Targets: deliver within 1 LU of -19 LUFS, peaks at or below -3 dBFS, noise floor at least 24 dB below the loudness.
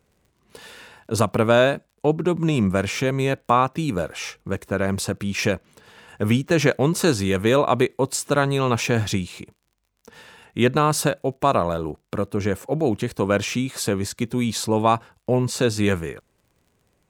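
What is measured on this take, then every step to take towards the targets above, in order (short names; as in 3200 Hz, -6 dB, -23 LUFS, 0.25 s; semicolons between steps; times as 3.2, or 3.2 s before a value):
ticks 39/s; loudness -22.0 LUFS; peak -3.0 dBFS; loudness target -19.0 LUFS
-> de-click; gain +3 dB; limiter -3 dBFS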